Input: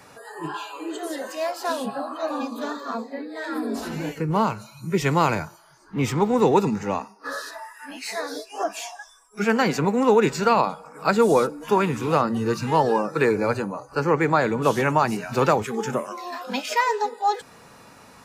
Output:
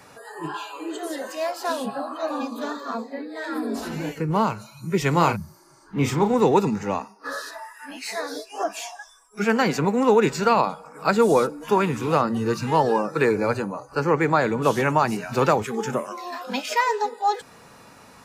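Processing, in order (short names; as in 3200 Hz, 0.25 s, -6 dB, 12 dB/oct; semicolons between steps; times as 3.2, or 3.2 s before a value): 5.35–5.78 spectral repair 220–10000 Hz after; 5.1–6.34 doubler 35 ms -7 dB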